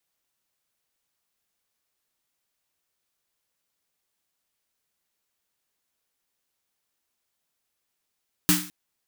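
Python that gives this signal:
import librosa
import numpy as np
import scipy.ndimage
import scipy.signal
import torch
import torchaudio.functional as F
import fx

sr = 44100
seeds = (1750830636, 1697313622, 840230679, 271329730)

y = fx.drum_snare(sr, seeds[0], length_s=0.21, hz=180.0, second_hz=300.0, noise_db=2, noise_from_hz=960.0, decay_s=0.38, noise_decay_s=0.41)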